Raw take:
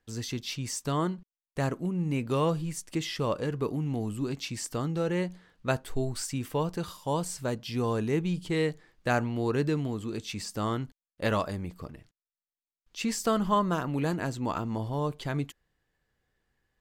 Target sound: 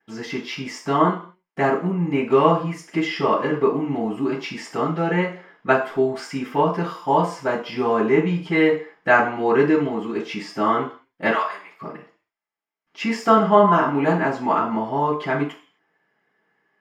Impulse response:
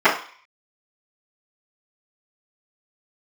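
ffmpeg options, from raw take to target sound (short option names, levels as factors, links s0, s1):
-filter_complex "[0:a]asettb=1/sr,asplit=3[s0][s1][s2];[s0]atrim=end=11.304[s3];[s1]atrim=start=11.3:end=11.81,asetpts=PTS-STARTPTS,afade=t=in:d=0.004:c=qsin,afade=t=out:st=0.506:d=0.004:c=qsin,highpass=1300[s4];[s2]atrim=start=11.806[s5];[s3][s4]acrossfade=d=0.004:c1=hsin:c2=qsin[s6];[s6][s5]acrossfade=d=0.004:c1=qsin:c2=hsin[s7];[1:a]atrim=start_sample=2205,afade=t=out:st=0.33:d=0.01,atrim=end_sample=14994[s8];[s7][s8]afir=irnorm=-1:irlink=0,volume=0.251"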